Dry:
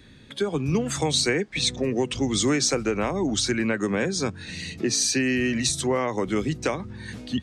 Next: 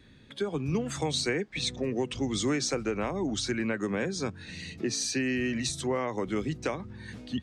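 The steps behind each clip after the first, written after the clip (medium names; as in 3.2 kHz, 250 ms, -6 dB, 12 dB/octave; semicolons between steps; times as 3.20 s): treble shelf 6.1 kHz -6 dB; trim -5.5 dB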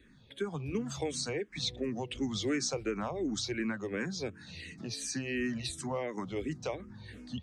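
barber-pole phaser -2.8 Hz; trim -2 dB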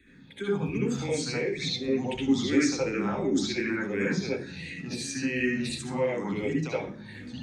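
hum notches 60/120 Hz; reverberation RT60 0.50 s, pre-delay 64 ms, DRR -4.5 dB; trim -1 dB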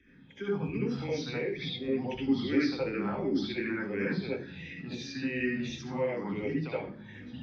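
knee-point frequency compression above 2.9 kHz 1.5:1; treble shelf 5.9 kHz -8.5 dB; trim -3.5 dB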